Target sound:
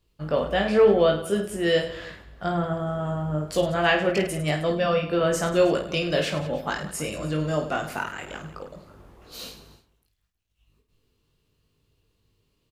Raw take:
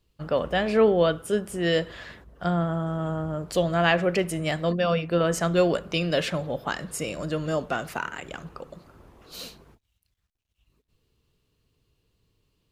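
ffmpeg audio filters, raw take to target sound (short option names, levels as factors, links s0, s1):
-af "aecho=1:1:20|52|103.2|185.1|316.2:0.631|0.398|0.251|0.158|0.1,volume=0.891"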